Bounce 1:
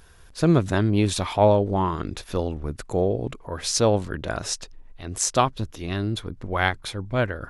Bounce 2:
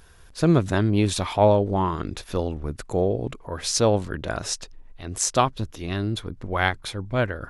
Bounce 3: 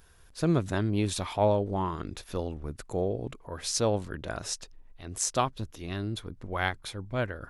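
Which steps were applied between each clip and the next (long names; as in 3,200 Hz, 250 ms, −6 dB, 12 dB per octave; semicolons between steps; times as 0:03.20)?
no processing that can be heard
high-shelf EQ 10,000 Hz +5.5 dB; level −7 dB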